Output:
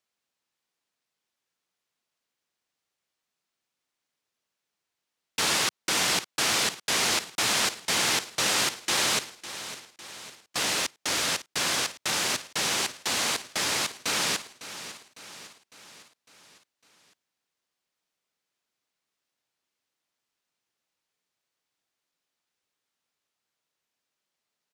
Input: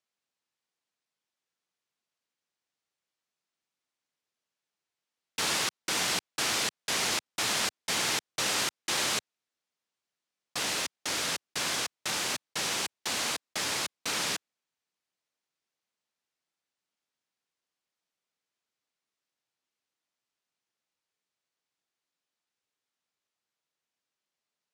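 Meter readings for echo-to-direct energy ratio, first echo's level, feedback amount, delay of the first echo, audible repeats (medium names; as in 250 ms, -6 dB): -12.5 dB, -14.0 dB, 54%, 554 ms, 4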